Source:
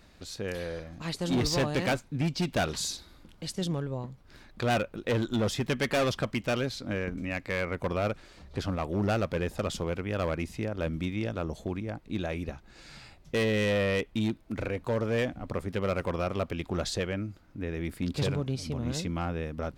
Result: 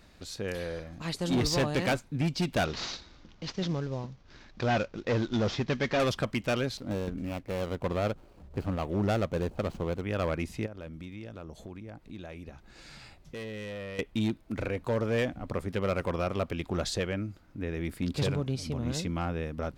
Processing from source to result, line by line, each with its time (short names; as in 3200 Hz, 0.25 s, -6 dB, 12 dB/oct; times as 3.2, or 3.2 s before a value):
2.65–6 CVSD 32 kbps
6.77–10.02 median filter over 25 samples
10.66–13.99 compressor 2.5:1, threshold -44 dBFS